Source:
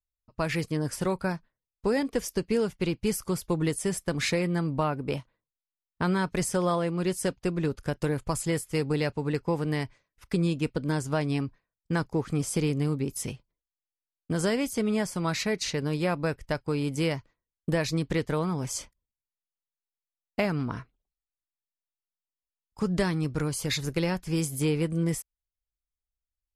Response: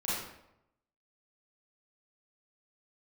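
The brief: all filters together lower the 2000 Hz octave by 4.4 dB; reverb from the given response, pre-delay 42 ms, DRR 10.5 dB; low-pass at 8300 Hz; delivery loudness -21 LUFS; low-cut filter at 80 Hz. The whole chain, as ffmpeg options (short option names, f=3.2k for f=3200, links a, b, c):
-filter_complex "[0:a]highpass=80,lowpass=8.3k,equalizer=f=2k:t=o:g=-5.5,asplit=2[a][b];[1:a]atrim=start_sample=2205,adelay=42[c];[b][c]afir=irnorm=-1:irlink=0,volume=-16.5dB[d];[a][d]amix=inputs=2:normalize=0,volume=8.5dB"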